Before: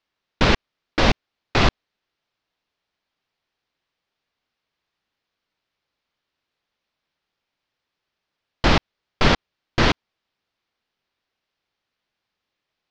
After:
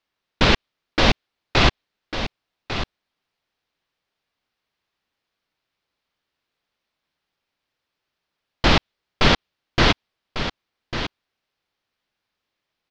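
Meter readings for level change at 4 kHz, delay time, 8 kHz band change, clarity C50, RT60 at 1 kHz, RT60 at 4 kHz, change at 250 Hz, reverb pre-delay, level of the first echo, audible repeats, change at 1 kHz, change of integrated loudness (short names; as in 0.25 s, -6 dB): +4.0 dB, 1.148 s, n/a, none, none, none, +0.5 dB, none, -10.0 dB, 1, +0.5 dB, 0.0 dB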